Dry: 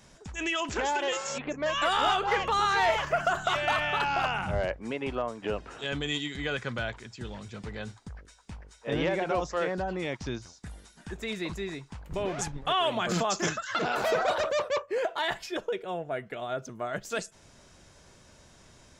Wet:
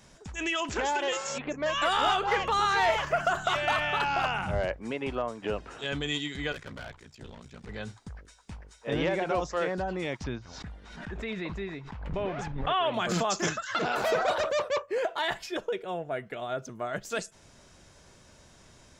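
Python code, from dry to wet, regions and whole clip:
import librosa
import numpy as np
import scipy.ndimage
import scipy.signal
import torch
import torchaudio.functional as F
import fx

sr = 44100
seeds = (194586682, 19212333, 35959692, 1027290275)

y = fx.chain(x, sr, fx.ring_mod(carrier_hz=30.0),
    fx.tube_stage(drive_db=35.0, bias=0.65), at=(6.52, 7.69))
y = fx.chain(y, sr, fx.lowpass(hz=2900.0, slope=12),
    fx.peak_eq(hz=350.0, db=-3.5, octaves=0.25),
    fx.pre_swell(db_per_s=50.0), at=(10.24, 12.94))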